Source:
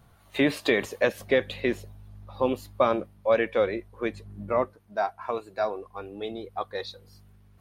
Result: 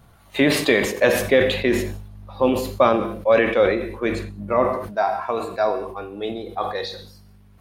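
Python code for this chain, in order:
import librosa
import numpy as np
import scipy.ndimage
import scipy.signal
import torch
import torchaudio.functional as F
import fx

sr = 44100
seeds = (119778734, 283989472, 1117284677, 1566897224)

y = fx.rev_gated(x, sr, seeds[0], gate_ms=230, shape='falling', drr_db=9.0)
y = fx.sustainer(y, sr, db_per_s=64.0)
y = F.gain(torch.from_numpy(y), 5.0).numpy()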